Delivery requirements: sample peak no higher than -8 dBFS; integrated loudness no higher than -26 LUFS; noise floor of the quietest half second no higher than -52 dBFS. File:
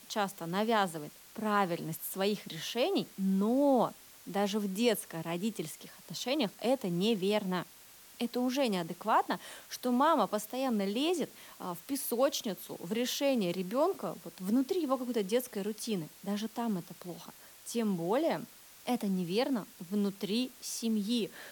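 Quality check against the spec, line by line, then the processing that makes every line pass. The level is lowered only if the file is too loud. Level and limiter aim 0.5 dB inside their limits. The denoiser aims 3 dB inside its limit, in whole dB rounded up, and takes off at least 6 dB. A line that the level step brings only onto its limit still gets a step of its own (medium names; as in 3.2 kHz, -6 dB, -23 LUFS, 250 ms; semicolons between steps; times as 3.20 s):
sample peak -15.5 dBFS: pass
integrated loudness -33.0 LUFS: pass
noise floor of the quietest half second -55 dBFS: pass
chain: none needed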